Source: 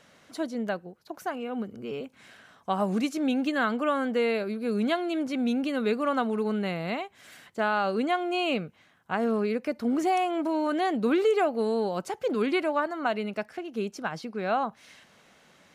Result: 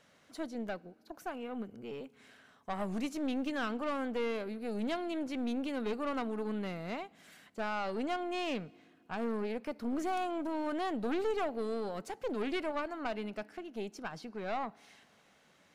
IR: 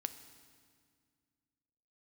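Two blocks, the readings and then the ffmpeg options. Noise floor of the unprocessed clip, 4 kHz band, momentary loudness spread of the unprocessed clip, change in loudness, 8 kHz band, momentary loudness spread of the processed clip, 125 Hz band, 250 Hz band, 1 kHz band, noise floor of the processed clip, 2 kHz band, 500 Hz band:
-60 dBFS, -8.5 dB, 10 LU, -9.0 dB, -7.0 dB, 9 LU, -8.5 dB, -8.5 dB, -9.0 dB, -66 dBFS, -9.5 dB, -9.0 dB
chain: -filter_complex "[0:a]aeval=exprs='(tanh(14.1*val(0)+0.5)-tanh(0.5))/14.1':c=same,asplit=2[s0][s1];[1:a]atrim=start_sample=2205[s2];[s1][s2]afir=irnorm=-1:irlink=0,volume=0.316[s3];[s0][s3]amix=inputs=2:normalize=0,volume=0.422"

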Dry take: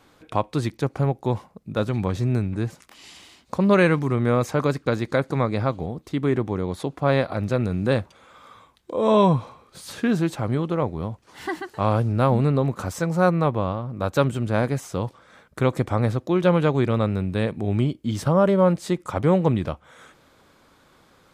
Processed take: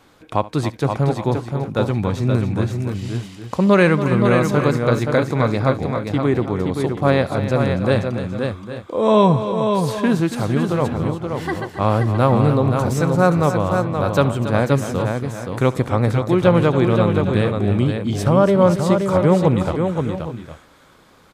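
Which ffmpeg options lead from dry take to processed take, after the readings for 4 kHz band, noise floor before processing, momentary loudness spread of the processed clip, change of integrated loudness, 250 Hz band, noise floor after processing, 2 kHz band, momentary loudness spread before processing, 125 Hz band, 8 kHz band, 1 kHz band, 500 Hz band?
+5.0 dB, -58 dBFS, 10 LU, +4.5 dB, +5.0 dB, -47 dBFS, +5.0 dB, 11 LU, +5.0 dB, +5.0 dB, +5.0 dB, +5.0 dB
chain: -af "aecho=1:1:70|280|525|807|832:0.106|0.266|0.531|0.188|0.133,volume=1.5"

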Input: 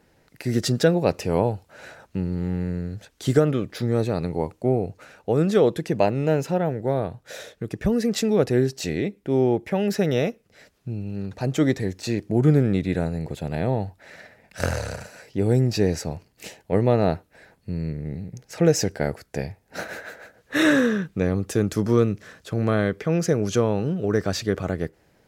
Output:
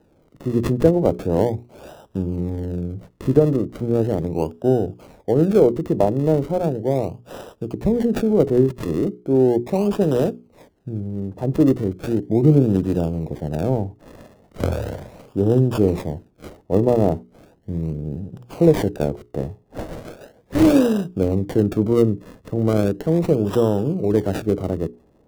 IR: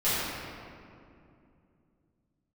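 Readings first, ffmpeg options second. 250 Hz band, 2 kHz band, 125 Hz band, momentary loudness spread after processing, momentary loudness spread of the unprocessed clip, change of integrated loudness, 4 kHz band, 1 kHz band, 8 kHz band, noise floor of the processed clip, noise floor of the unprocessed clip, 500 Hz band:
+4.0 dB, -8.5 dB, +2.5 dB, 14 LU, 14 LU, +3.5 dB, -6.5 dB, +0.5 dB, no reading, -57 dBFS, -63 dBFS, +3.5 dB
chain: -filter_complex "[0:a]equalizer=f=320:t=o:w=0.58:g=4,bandreject=f=60:t=h:w=6,bandreject=f=120:t=h:w=6,bandreject=f=180:t=h:w=6,bandreject=f=240:t=h:w=6,bandreject=f=300:t=h:w=6,bandreject=f=360:t=h:w=6,bandreject=f=420:t=h:w=6,acrossover=split=360|1000[s0][s1][s2];[s2]acrusher=samples=39:mix=1:aa=0.000001:lfo=1:lforange=39:lforate=0.37[s3];[s0][s1][s3]amix=inputs=3:normalize=0,volume=1.41"

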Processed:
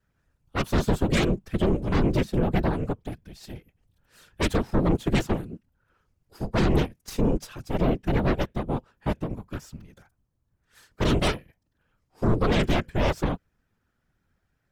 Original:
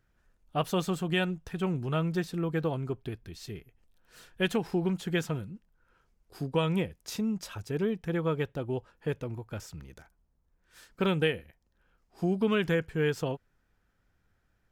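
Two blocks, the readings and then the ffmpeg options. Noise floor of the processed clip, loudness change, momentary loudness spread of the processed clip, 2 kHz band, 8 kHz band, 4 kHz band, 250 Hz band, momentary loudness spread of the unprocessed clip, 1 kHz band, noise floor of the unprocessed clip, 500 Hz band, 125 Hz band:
-75 dBFS, +5.0 dB, 15 LU, +2.5 dB, +4.5 dB, +3.5 dB, +5.0 dB, 14 LU, +6.5 dB, -73 dBFS, +3.0 dB, +6.0 dB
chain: -af "adynamicequalizer=threshold=0.00891:dfrequency=180:dqfactor=1.7:tfrequency=180:tqfactor=1.7:attack=5:release=100:ratio=0.375:range=3:mode=boostabove:tftype=bell,aeval=exprs='0.237*(cos(1*acos(clip(val(0)/0.237,-1,1)))-cos(1*PI/2))+0.00531*(cos(4*acos(clip(val(0)/0.237,-1,1)))-cos(4*PI/2))+0.106*(cos(6*acos(clip(val(0)/0.237,-1,1)))-cos(6*PI/2))+0.00168*(cos(7*acos(clip(val(0)/0.237,-1,1)))-cos(7*PI/2))':c=same,afftfilt=real='hypot(re,im)*cos(2*PI*random(0))':imag='hypot(re,im)*sin(2*PI*random(1))':win_size=512:overlap=0.75,asoftclip=type=tanh:threshold=0.119,volume=1.88"

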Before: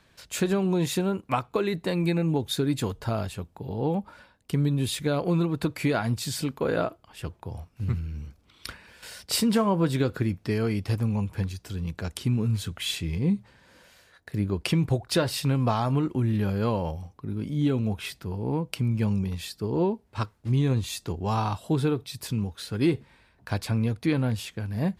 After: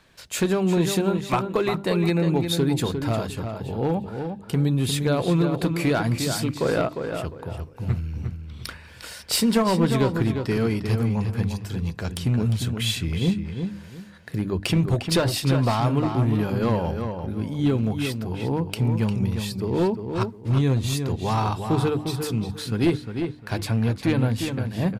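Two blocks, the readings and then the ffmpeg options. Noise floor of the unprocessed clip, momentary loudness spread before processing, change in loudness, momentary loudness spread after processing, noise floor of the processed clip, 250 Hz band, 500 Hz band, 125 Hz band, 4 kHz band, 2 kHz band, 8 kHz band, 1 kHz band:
-62 dBFS, 10 LU, +3.5 dB, 10 LU, -43 dBFS, +3.5 dB, +4.0 dB, +3.5 dB, +4.0 dB, +4.0 dB, +3.5 dB, +3.5 dB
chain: -filter_complex "[0:a]bandreject=f=50:t=h:w=6,bandreject=f=100:t=h:w=6,bandreject=f=150:t=h:w=6,bandreject=f=200:t=h:w=6,bandreject=f=250:t=h:w=6,bandreject=f=300:t=h:w=6,aeval=exprs='clip(val(0),-1,0.1)':c=same,asplit=2[s0][s1];[s1]adelay=353,lowpass=f=3600:p=1,volume=0.473,asplit=2[s2][s3];[s3]adelay=353,lowpass=f=3600:p=1,volume=0.26,asplit=2[s4][s5];[s5]adelay=353,lowpass=f=3600:p=1,volume=0.26[s6];[s0][s2][s4][s6]amix=inputs=4:normalize=0,volume=1.5"

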